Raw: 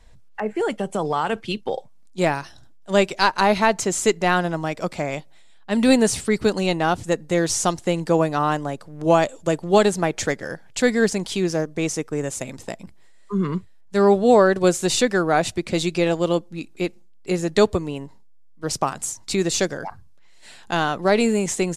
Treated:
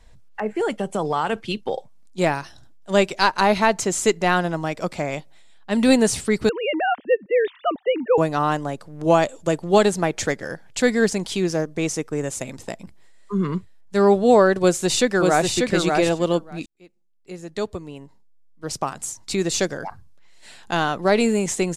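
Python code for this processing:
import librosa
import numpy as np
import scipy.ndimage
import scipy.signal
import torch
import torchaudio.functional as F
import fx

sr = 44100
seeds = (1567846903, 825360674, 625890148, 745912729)

y = fx.sine_speech(x, sr, at=(6.49, 8.18))
y = fx.echo_throw(y, sr, start_s=14.61, length_s=0.9, ms=590, feedback_pct=10, wet_db=-3.5)
y = fx.edit(y, sr, fx.fade_in_span(start_s=16.66, length_s=3.13), tone=tone)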